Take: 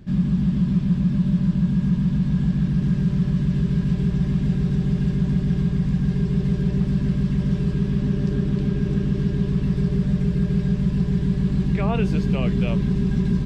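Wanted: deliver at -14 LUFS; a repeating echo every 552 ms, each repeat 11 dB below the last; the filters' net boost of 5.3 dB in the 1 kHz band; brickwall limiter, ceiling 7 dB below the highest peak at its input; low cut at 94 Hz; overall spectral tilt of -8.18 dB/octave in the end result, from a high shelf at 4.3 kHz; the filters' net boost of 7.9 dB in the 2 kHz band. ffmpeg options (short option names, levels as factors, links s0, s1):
-af "highpass=94,equalizer=f=1000:t=o:g=4.5,equalizer=f=2000:t=o:g=8,highshelf=f=4300:g=4.5,alimiter=limit=0.168:level=0:latency=1,aecho=1:1:552|1104|1656:0.282|0.0789|0.0221,volume=2.99"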